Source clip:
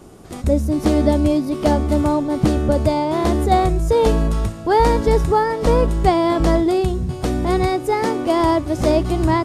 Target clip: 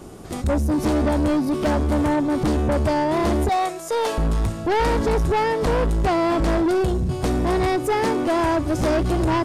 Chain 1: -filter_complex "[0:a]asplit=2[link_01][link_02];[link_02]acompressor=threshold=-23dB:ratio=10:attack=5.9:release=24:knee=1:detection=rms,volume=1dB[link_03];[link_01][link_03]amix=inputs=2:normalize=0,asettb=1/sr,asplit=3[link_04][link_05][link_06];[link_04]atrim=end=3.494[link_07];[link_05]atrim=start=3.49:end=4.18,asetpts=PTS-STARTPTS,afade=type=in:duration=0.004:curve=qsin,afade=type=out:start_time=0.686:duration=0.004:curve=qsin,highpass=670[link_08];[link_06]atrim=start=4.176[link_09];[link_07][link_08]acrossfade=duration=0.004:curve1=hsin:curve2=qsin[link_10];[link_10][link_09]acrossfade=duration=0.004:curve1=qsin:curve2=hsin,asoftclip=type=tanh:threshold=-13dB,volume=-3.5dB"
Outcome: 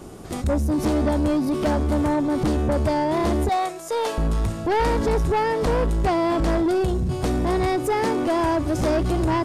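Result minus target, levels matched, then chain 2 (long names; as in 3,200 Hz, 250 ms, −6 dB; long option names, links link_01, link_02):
downward compressor: peak gain reduction +8 dB
-filter_complex "[0:a]asplit=2[link_01][link_02];[link_02]acompressor=threshold=-14dB:ratio=10:attack=5.9:release=24:knee=1:detection=rms,volume=1dB[link_03];[link_01][link_03]amix=inputs=2:normalize=0,asettb=1/sr,asplit=3[link_04][link_05][link_06];[link_04]atrim=end=3.494[link_07];[link_05]atrim=start=3.49:end=4.18,asetpts=PTS-STARTPTS,afade=type=in:duration=0.004:curve=qsin,afade=type=out:start_time=0.686:duration=0.004:curve=qsin,highpass=670[link_08];[link_06]atrim=start=4.176[link_09];[link_07][link_08]acrossfade=duration=0.004:curve1=hsin:curve2=qsin[link_10];[link_10][link_09]acrossfade=duration=0.004:curve1=qsin:curve2=hsin,asoftclip=type=tanh:threshold=-13dB,volume=-3.5dB"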